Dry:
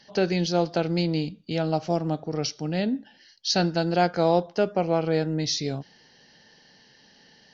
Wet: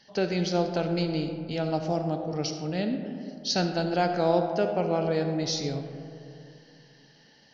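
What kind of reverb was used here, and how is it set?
digital reverb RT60 2.6 s, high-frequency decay 0.3×, pre-delay 20 ms, DRR 6 dB; gain -3.5 dB

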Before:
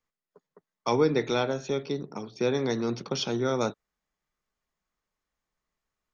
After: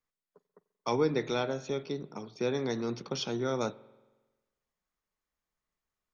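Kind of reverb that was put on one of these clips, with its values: spring tank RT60 1.2 s, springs 45 ms, chirp 65 ms, DRR 19.5 dB; gain -4.5 dB

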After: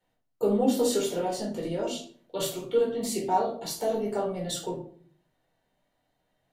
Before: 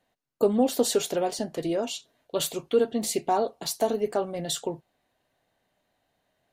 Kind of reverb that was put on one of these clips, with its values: shoebox room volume 430 m³, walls furnished, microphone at 4.4 m; gain -9 dB

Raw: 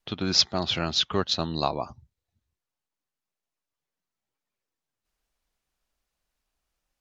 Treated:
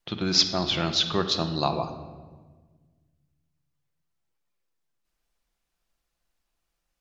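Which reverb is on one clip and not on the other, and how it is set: shoebox room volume 1300 m³, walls mixed, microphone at 0.8 m

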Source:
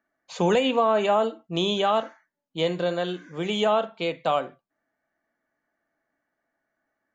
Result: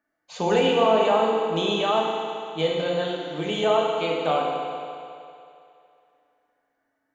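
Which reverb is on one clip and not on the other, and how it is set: FDN reverb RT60 2.6 s, low-frequency decay 0.75×, high-frequency decay 0.95×, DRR -2 dB; gain -2.5 dB

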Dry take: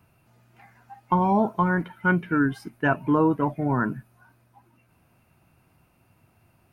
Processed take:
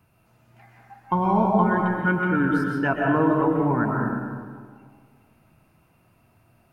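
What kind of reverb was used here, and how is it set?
digital reverb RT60 1.8 s, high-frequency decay 0.4×, pre-delay 90 ms, DRR -1 dB; gain -1.5 dB

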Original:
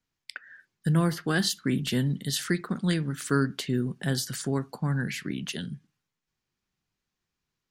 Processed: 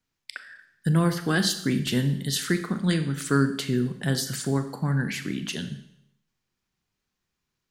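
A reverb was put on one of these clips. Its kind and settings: Schroeder reverb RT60 0.75 s, combs from 29 ms, DRR 9 dB; gain +2 dB

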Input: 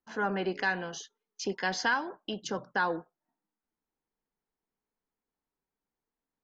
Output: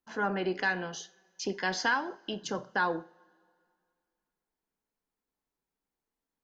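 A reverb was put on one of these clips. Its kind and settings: two-slope reverb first 0.39 s, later 2.3 s, from -22 dB, DRR 13 dB

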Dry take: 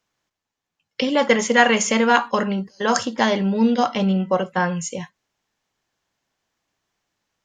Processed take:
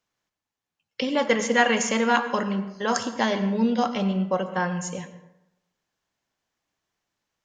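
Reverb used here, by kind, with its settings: plate-style reverb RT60 0.9 s, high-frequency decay 0.5×, pre-delay 80 ms, DRR 11.5 dB; gain -5 dB

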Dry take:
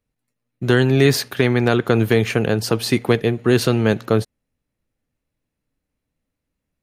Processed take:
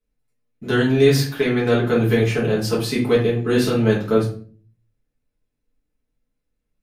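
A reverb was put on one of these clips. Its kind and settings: shoebox room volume 33 m³, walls mixed, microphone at 1.4 m; gain -11 dB

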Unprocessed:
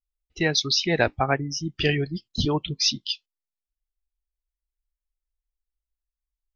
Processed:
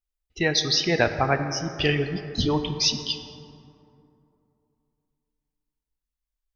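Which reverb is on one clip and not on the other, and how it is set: plate-style reverb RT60 2.9 s, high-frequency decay 0.4×, DRR 7.5 dB

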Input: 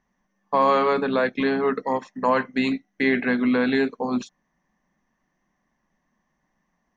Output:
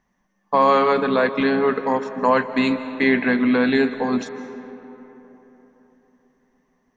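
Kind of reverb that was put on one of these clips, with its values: digital reverb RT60 3.9 s, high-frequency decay 0.45×, pre-delay 0.115 s, DRR 11.5 dB; gain +3 dB

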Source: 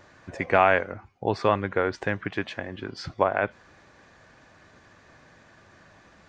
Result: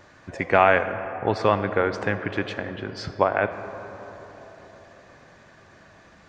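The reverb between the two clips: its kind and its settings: digital reverb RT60 4.4 s, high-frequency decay 0.3×, pre-delay 20 ms, DRR 10.5 dB; gain +2 dB

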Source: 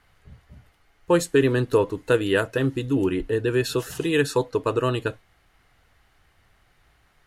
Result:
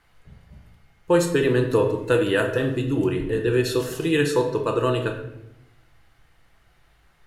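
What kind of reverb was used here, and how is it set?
shoebox room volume 250 m³, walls mixed, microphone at 0.75 m; gain -1 dB

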